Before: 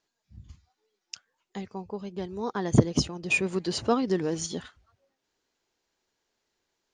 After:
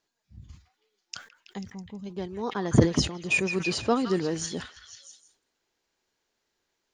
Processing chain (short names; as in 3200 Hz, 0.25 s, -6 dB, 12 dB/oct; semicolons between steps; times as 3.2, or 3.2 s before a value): spectral gain 1.58–2.06, 290–5300 Hz -13 dB; delay with a stepping band-pass 0.163 s, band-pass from 1700 Hz, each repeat 0.7 oct, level -5 dB; sustainer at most 150 dB/s